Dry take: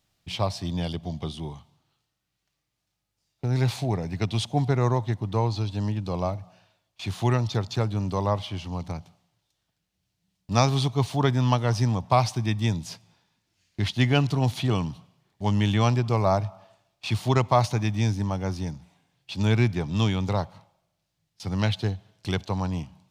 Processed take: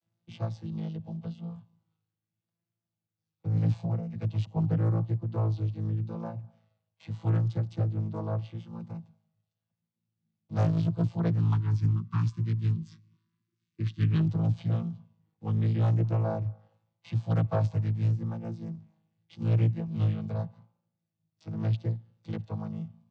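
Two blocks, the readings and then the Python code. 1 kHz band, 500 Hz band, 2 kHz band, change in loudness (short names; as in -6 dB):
-15.0 dB, -10.5 dB, under -15 dB, -4.0 dB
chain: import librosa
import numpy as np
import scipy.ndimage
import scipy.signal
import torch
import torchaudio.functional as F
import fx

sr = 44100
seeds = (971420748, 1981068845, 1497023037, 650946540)

y = fx.chord_vocoder(x, sr, chord='bare fifth', root=45)
y = fx.vibrato(y, sr, rate_hz=0.83, depth_cents=50.0)
y = fx.spec_erase(y, sr, start_s=11.4, length_s=2.81, low_hz=410.0, high_hz=930.0)
y = fx.doppler_dist(y, sr, depth_ms=0.49)
y = F.gain(torch.from_numpy(y), -2.5).numpy()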